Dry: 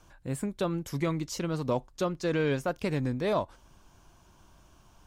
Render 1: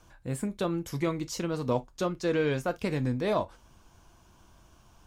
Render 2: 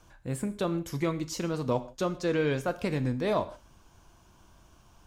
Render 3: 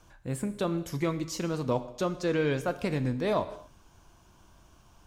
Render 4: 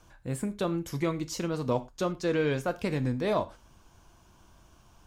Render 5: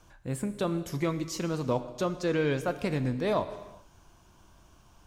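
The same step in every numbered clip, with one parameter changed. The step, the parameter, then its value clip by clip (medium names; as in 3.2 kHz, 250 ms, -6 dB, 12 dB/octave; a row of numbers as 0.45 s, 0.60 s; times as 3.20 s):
gated-style reverb, gate: 80 ms, 190 ms, 290 ms, 130 ms, 450 ms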